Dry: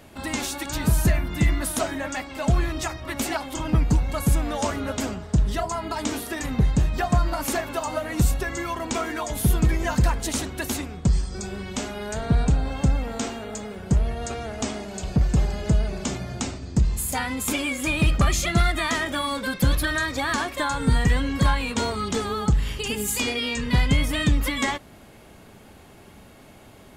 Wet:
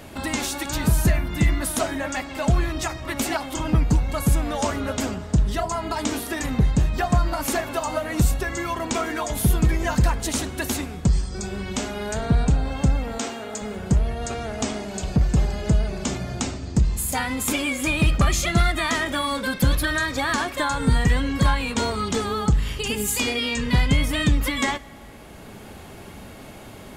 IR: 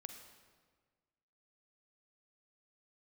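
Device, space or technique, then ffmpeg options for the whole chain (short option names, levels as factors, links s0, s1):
ducked reverb: -filter_complex "[0:a]asplit=3[s0][s1][s2];[1:a]atrim=start_sample=2205[s3];[s1][s3]afir=irnorm=-1:irlink=0[s4];[s2]apad=whole_len=1189221[s5];[s4][s5]sidechaincompress=threshold=0.0141:ratio=8:attack=16:release=720,volume=2.37[s6];[s0][s6]amix=inputs=2:normalize=0,asettb=1/sr,asplit=3[s7][s8][s9];[s7]atrim=end=13.184[s10];[s8]atrim=start=13.18:end=13.62,asetpts=PTS-STARTPTS,afade=t=in:d=0.004:c=qsin,afade=t=out:st=0.436:d=0.004:c=qsin,highpass=f=290:p=1[s11];[s9]atrim=start=13.616[s12];[s10][s11]acrossfade=d=0.004:c1=hsin:c2=qsin[s13];[s13][s12]acrossfade=d=0.004:c1=qsin:c2=hsin"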